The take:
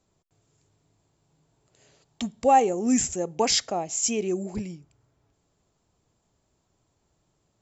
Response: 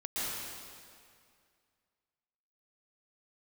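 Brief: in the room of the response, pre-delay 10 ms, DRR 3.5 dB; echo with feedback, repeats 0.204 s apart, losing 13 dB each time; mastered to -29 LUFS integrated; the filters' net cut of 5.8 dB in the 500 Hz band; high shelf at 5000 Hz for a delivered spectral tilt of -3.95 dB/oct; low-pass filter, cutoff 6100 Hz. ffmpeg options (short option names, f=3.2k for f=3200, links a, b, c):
-filter_complex "[0:a]lowpass=6.1k,equalizer=f=500:t=o:g=-7,highshelf=f=5k:g=-7.5,aecho=1:1:204|408|612:0.224|0.0493|0.0108,asplit=2[a][b];[1:a]atrim=start_sample=2205,adelay=10[c];[b][c]afir=irnorm=-1:irlink=0,volume=-9dB[d];[a][d]amix=inputs=2:normalize=0,volume=-3dB"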